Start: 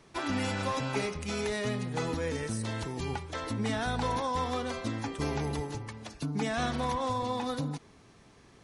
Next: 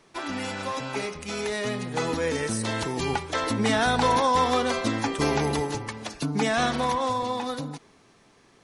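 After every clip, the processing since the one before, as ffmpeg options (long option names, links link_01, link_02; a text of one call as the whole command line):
ffmpeg -i in.wav -af "dynaudnorm=framelen=320:gausssize=13:maxgain=9dB,equalizer=frequency=60:width=0.46:gain=-10.5,volume=1.5dB" out.wav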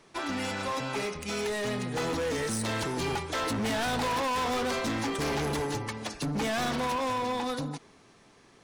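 ffmpeg -i in.wav -af "asoftclip=type=hard:threshold=-27.5dB" out.wav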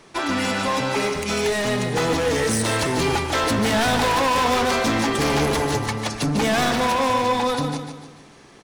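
ffmpeg -i in.wav -af "aecho=1:1:147|294|441|588|735:0.422|0.186|0.0816|0.0359|0.0158,volume=9dB" out.wav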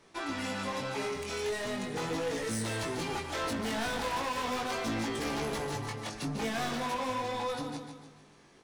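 ffmpeg -i in.wav -af "asoftclip=type=tanh:threshold=-16.5dB,flanger=delay=17.5:depth=4.6:speed=0.39,volume=-8.5dB" out.wav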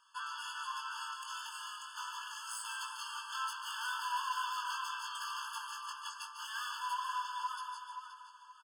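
ffmpeg -i in.wav -filter_complex "[0:a]asplit=2[link_01][link_02];[link_02]adelay=524,lowpass=frequency=3900:poles=1,volume=-7dB,asplit=2[link_03][link_04];[link_04]adelay=524,lowpass=frequency=3900:poles=1,volume=0.3,asplit=2[link_05][link_06];[link_06]adelay=524,lowpass=frequency=3900:poles=1,volume=0.3,asplit=2[link_07][link_08];[link_08]adelay=524,lowpass=frequency=3900:poles=1,volume=0.3[link_09];[link_01][link_03][link_05][link_07][link_09]amix=inputs=5:normalize=0,afftfilt=real='re*eq(mod(floor(b*sr/1024/880),2),1)':imag='im*eq(mod(floor(b*sr/1024/880),2),1)':win_size=1024:overlap=0.75,volume=-1dB" out.wav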